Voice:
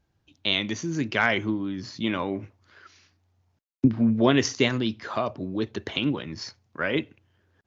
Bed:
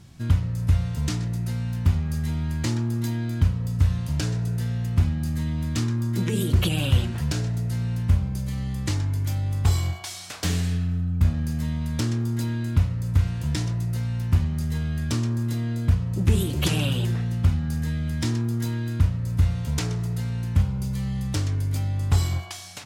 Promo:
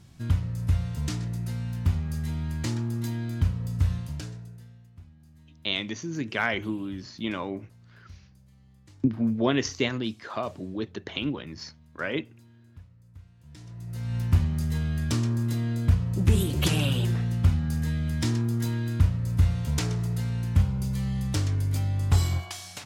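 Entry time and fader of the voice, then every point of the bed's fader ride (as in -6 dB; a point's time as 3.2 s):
5.20 s, -4.0 dB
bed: 3.94 s -4 dB
4.93 s -28 dB
13.37 s -28 dB
14.16 s -1 dB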